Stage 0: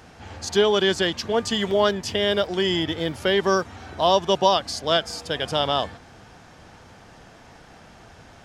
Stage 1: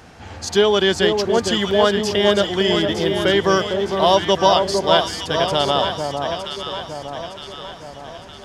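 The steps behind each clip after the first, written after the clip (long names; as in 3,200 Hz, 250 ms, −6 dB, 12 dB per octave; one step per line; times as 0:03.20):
delay that swaps between a low-pass and a high-pass 456 ms, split 1,100 Hz, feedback 70%, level −4 dB
level +3.5 dB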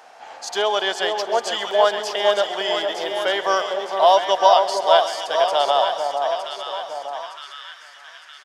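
repeating echo 132 ms, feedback 60%, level −15 dB
high-pass filter sweep 700 Hz → 1,600 Hz, 0:07.07–0:07.61
level −4 dB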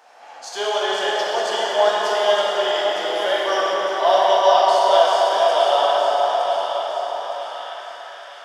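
parametric band 140 Hz −10.5 dB 0.48 octaves
dense smooth reverb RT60 4.6 s, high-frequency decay 0.65×, DRR −6.5 dB
level −6 dB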